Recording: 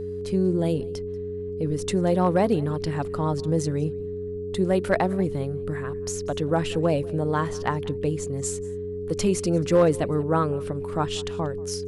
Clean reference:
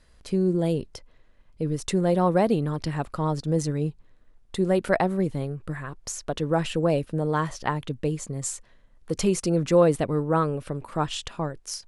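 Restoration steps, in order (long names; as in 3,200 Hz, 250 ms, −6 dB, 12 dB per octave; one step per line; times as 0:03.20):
clipped peaks rebuilt −11.5 dBFS
hum removal 91.6 Hz, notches 3
notch filter 420 Hz, Q 30
echo removal 186 ms −23 dB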